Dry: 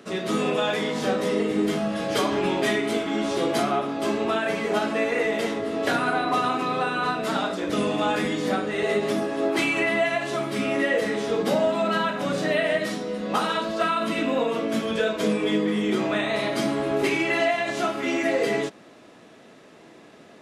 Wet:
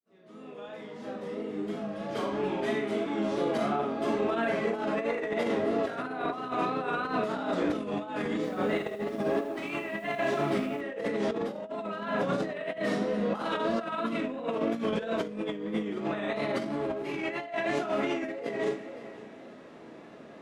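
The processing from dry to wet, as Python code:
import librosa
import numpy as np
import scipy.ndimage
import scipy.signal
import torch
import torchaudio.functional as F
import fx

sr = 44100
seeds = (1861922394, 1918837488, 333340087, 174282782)

y = fx.fade_in_head(x, sr, length_s=6.09)
y = fx.high_shelf(y, sr, hz=10000.0, db=-7.5)
y = fx.hum_notches(y, sr, base_hz=50, count=4)
y = fx.vibrato(y, sr, rate_hz=3.0, depth_cents=57.0)
y = fx.echo_heads(y, sr, ms=178, heads='first and third', feedback_pct=43, wet_db=-22.5)
y = fx.rev_schroeder(y, sr, rt60_s=0.3, comb_ms=27, drr_db=4.0)
y = fx.over_compress(y, sr, threshold_db=-26.0, ratio=-0.5)
y = fx.high_shelf(y, sr, hz=2300.0, db=-9.5)
y = fx.echo_crushed(y, sr, ms=81, feedback_pct=35, bits=8, wet_db=-11, at=(8.35, 10.81))
y = y * 10.0 ** (-3.0 / 20.0)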